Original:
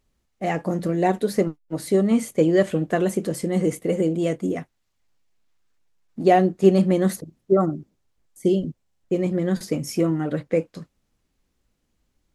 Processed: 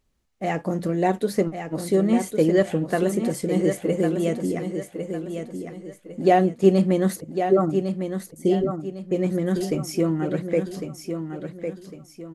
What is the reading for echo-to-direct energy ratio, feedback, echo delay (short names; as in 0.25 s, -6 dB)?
-7.0 dB, 35%, 1.104 s